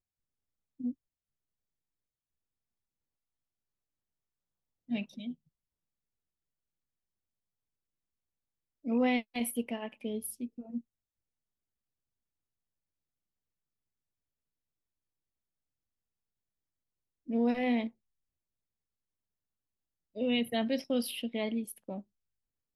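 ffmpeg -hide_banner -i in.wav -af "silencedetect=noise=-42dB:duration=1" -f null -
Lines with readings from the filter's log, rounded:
silence_start: 0.92
silence_end: 4.90 | silence_duration: 3.98
silence_start: 5.33
silence_end: 8.85 | silence_duration: 3.52
silence_start: 10.80
silence_end: 17.29 | silence_duration: 6.49
silence_start: 17.89
silence_end: 20.16 | silence_duration: 2.28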